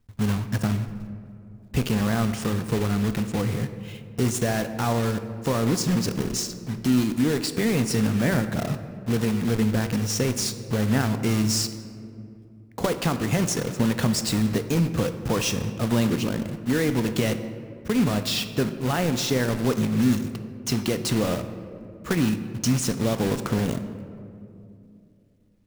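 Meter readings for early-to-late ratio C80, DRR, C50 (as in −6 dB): 11.5 dB, 9.0 dB, 10.5 dB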